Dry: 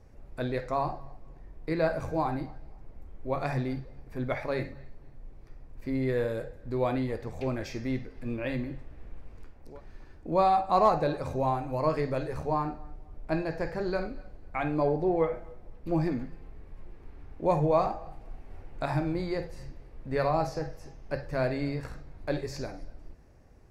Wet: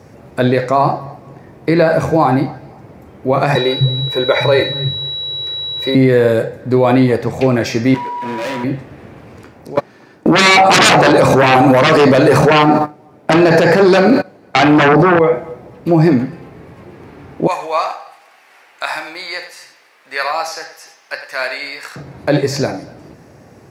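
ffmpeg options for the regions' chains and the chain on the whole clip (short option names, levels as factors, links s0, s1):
-filter_complex "[0:a]asettb=1/sr,asplit=3[s0][s1][s2];[s0]atrim=end=3.554[s3];[s1]atrim=start=3.55:end=5.95,asetpts=PTS-STARTPTS,afade=t=in:d=0.004:c=qsin,afade=t=out:st=2.396:d=0.004:c=qsin,aecho=1:1:2.1:0.75,atrim=end_sample=105840,acrossover=split=200[s4][s5];[s4]adelay=250[s6];[s6][s5]amix=inputs=2:normalize=0,atrim=end_sample=105840,aeval=exprs='val(0)+0.01*sin(2*PI*3900*n/s)':c=same[s7];[s2]atrim=start=5.946[s8];[s3][s7]acrossfade=d=0.004:c1=hsin:c2=qsin[s9];[s9][s8]acrossfade=d=0.004:c1=qsin:c2=hsin,asettb=1/sr,asplit=3[s10][s11][s12];[s10]atrim=end=7.944[s13];[s11]atrim=start=7.94:end=8.64,asetpts=PTS-STARTPTS,afade=t=in:d=0.004:c=qsin,afade=t=out:st=0.696:d=0.004:c=qsin,bass=f=250:g=-15,treble=f=4000:g=-13,aeval=exprs='val(0)+0.01*sin(2*PI*970*n/s)':c=same,asoftclip=type=hard:threshold=0.0106[s14];[s12]atrim=start=8.636[s15];[s13][s14]acrossfade=d=0.004:c1=hsin:c2=qsin[s16];[s16][s15]acrossfade=d=0.004:c1=qsin:c2=hsin,asettb=1/sr,asplit=3[s17][s18][s19];[s17]atrim=end=9.764[s20];[s18]atrim=start=9.76:end=15.19,asetpts=PTS-STARTPTS,afade=t=in:d=0.004:c=qsin,afade=t=out:st=5.426:d=0.004:c=qsin,highpass=160,aeval=exprs='0.316*sin(PI/2*7.08*val(0)/0.316)':c=same,agate=range=0.0501:threshold=0.0398:ratio=16:release=100:detection=peak[s21];[s19]atrim=start=15.186[s22];[s20][s21]acrossfade=d=0.004:c1=hsin:c2=qsin[s23];[s23][s22]acrossfade=d=0.004:c1=qsin:c2=hsin,asettb=1/sr,asplit=3[s24][s25][s26];[s24]atrim=end=17.474[s27];[s25]atrim=start=17.47:end=21.96,asetpts=PTS-STARTPTS,afade=t=in:d=0.004:c=qsin,afade=t=out:st=4.486:d=0.004:c=qsin,highpass=1500,aecho=1:1:96:0.237,atrim=end_sample=198009[s28];[s26]atrim=start=21.956[s29];[s27][s28]acrossfade=d=0.004:c1=hsin:c2=qsin[s30];[s30][s29]acrossfade=d=0.004:c1=qsin:c2=hsin,highpass=f=110:w=0.5412,highpass=f=110:w=1.3066,alimiter=level_in=11.2:limit=0.891:release=50:level=0:latency=1,volume=0.891"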